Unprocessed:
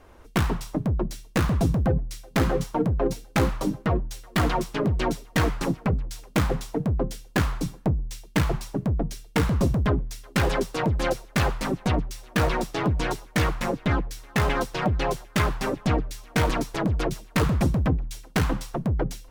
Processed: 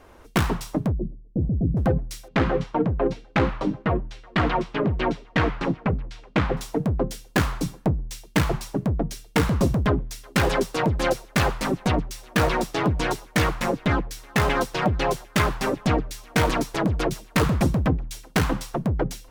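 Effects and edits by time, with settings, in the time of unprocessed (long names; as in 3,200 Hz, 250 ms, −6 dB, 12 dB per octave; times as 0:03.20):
0:00.92–0:01.77: Gaussian smoothing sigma 21 samples
0:02.28–0:06.57: Chebyshev low-pass filter 2,800 Hz
whole clip: low-shelf EQ 110 Hz −5 dB; level +3 dB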